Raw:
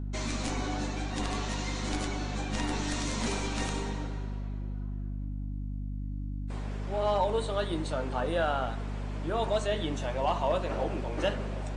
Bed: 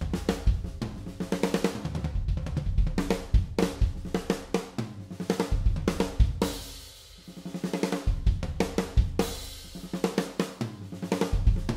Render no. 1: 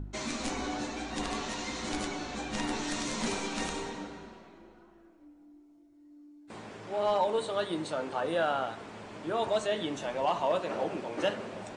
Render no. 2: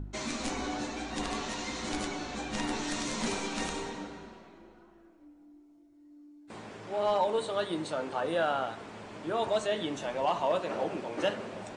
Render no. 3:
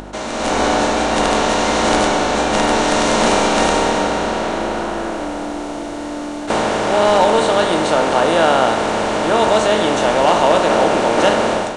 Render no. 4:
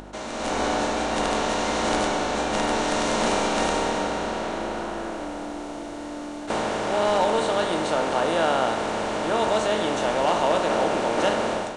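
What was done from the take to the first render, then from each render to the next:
de-hum 50 Hz, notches 5
no audible change
spectral levelling over time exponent 0.4; level rider gain up to 13.5 dB
trim -8.5 dB

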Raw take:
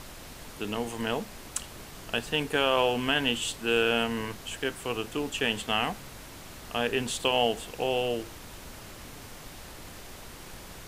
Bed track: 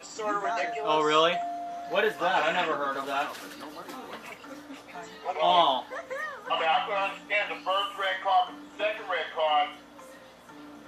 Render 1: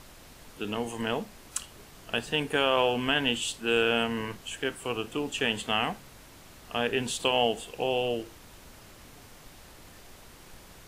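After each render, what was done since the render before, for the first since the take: noise print and reduce 6 dB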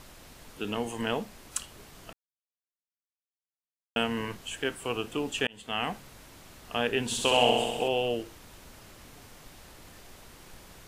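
2.13–3.96 s: mute; 5.47–5.95 s: fade in; 7.05–7.88 s: flutter echo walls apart 11.1 m, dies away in 1.2 s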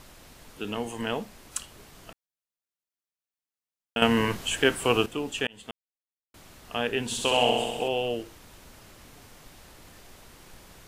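4.02–5.06 s: gain +9 dB; 5.71–6.34 s: mute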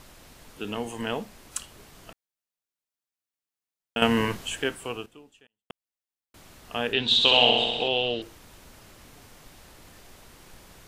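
4.23–5.70 s: fade out quadratic; 6.93–8.22 s: resonant low-pass 3.8 kHz, resonance Q 13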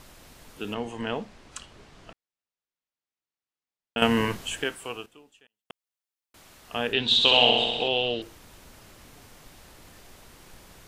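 0.74–3.98 s: distance through air 88 m; 4.64–6.73 s: bass shelf 390 Hz -6.5 dB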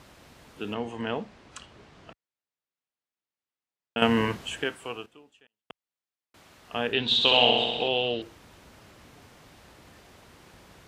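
high-pass 59 Hz; treble shelf 6.5 kHz -11 dB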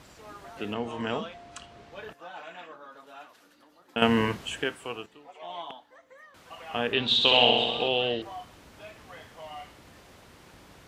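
add bed track -17.5 dB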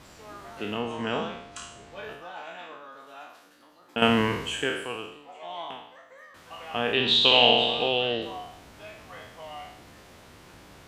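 spectral sustain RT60 0.74 s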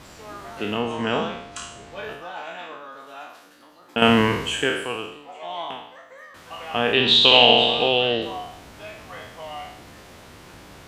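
trim +5.5 dB; peak limiter -1 dBFS, peak gain reduction 2 dB

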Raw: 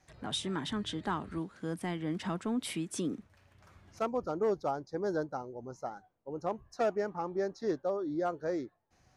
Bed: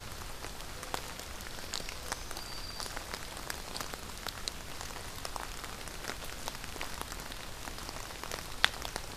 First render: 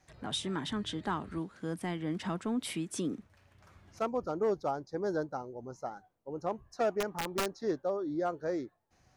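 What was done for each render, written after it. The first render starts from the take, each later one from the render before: 7.00–7.55 s: integer overflow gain 26 dB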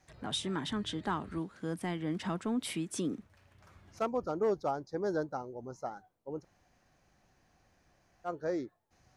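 6.42–8.27 s: room tone, crossfade 0.06 s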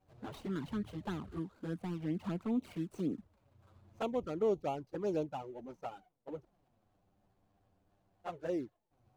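median filter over 25 samples; touch-sensitive flanger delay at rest 10.7 ms, full sweep at -29.5 dBFS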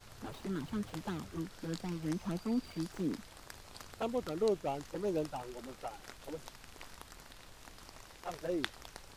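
add bed -11.5 dB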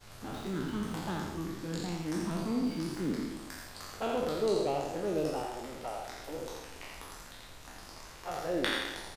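spectral sustain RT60 1.12 s; delay 85 ms -5.5 dB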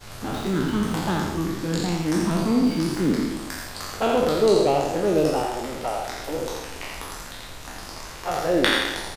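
trim +11.5 dB

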